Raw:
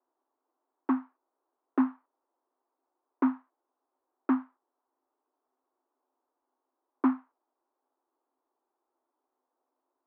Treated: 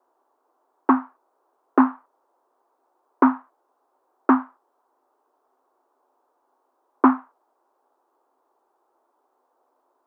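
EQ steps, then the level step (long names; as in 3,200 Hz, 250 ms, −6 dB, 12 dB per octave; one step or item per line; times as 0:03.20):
flat-topped bell 780 Hz +8 dB 2.3 octaves
+7.5 dB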